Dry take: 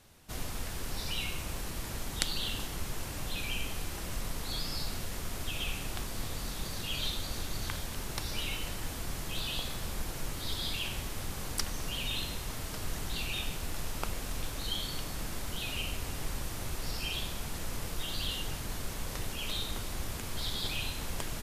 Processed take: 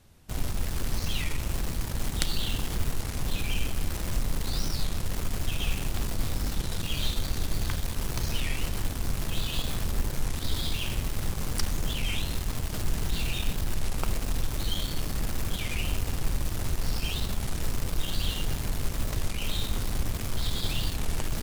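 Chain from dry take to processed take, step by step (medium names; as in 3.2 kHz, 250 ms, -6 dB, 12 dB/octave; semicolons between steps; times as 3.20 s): bass shelf 280 Hz +9 dB; in parallel at -5.5 dB: bit crusher 5-bit; on the sum: warped record 33 1/3 rpm, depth 250 cents; trim -3 dB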